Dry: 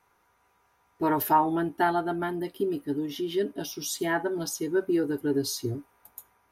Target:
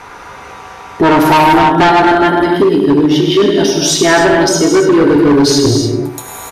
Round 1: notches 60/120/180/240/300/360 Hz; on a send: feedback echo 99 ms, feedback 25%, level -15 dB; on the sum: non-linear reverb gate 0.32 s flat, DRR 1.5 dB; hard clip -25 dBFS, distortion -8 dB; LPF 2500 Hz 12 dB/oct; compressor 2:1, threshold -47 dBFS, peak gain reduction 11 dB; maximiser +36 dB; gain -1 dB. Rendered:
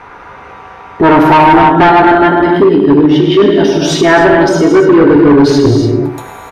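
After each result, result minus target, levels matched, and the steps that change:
8000 Hz band -11.5 dB; compressor: peak gain reduction -4.5 dB
change: LPF 6200 Hz 12 dB/oct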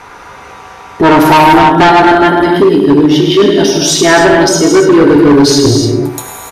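compressor: peak gain reduction -4.5 dB
change: compressor 2:1, threshold -56 dBFS, peak gain reduction 15.5 dB

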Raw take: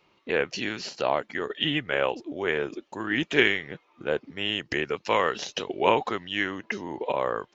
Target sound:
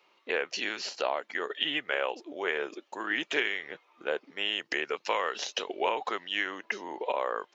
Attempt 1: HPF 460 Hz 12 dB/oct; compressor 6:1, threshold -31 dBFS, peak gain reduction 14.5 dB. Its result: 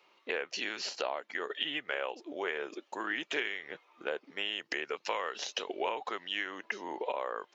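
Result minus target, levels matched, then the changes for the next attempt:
compressor: peak gain reduction +5.5 dB
change: compressor 6:1, threshold -24.5 dBFS, peak gain reduction 9 dB

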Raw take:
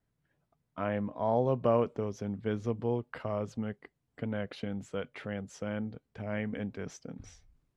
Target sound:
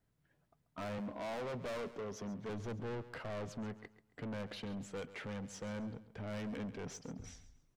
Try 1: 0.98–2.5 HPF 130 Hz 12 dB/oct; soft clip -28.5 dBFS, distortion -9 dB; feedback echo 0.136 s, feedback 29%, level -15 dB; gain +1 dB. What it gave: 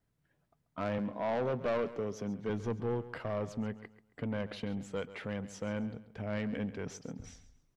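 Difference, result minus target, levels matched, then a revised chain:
soft clip: distortion -6 dB
0.98–2.5 HPF 130 Hz 12 dB/oct; soft clip -40 dBFS, distortion -3 dB; feedback echo 0.136 s, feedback 29%, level -15 dB; gain +1 dB

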